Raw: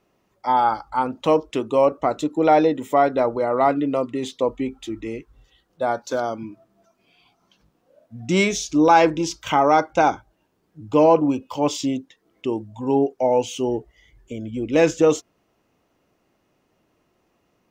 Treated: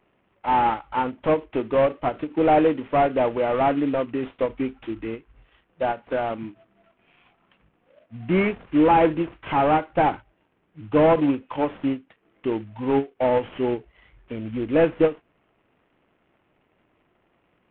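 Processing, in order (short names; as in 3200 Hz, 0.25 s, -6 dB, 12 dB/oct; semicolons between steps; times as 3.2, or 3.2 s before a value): CVSD 16 kbps; ending taper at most 300 dB/s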